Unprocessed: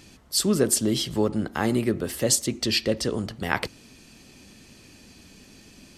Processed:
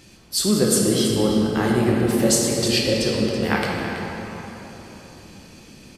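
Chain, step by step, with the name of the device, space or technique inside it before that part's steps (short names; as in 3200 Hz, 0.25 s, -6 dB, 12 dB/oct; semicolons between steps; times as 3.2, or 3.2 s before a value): cave (echo 0.328 s -12.5 dB; reverb RT60 3.9 s, pre-delay 4 ms, DRR -3 dB)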